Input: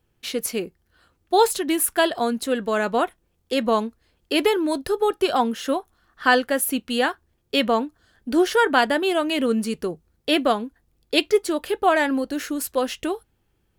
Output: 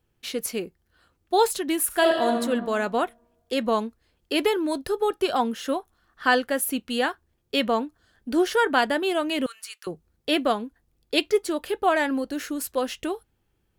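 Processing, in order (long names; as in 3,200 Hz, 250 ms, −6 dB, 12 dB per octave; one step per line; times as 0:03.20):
0:01.86–0:02.37: thrown reverb, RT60 1.4 s, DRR 1 dB
0:09.46–0:09.87: high-pass filter 1,300 Hz 24 dB per octave
level −3 dB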